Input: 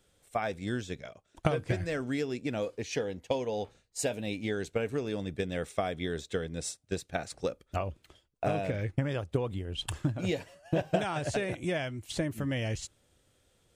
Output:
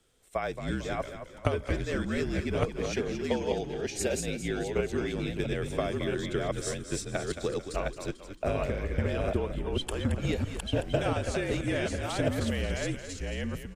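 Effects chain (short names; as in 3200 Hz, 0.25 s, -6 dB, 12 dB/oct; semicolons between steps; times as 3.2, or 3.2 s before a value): reverse delay 0.683 s, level -2 dB; frequency-shifting echo 0.222 s, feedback 45%, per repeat -42 Hz, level -10 dB; frequency shift -46 Hz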